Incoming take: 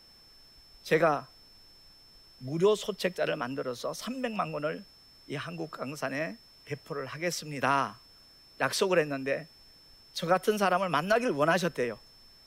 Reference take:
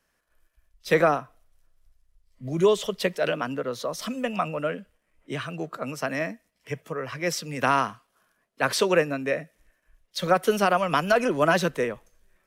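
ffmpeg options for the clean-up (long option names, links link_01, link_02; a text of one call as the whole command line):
ffmpeg -i in.wav -af "bandreject=frequency=5300:width=30,agate=range=-21dB:threshold=-49dB,asetnsamples=nb_out_samples=441:pad=0,asendcmd='0.79 volume volume 4.5dB',volume=0dB" out.wav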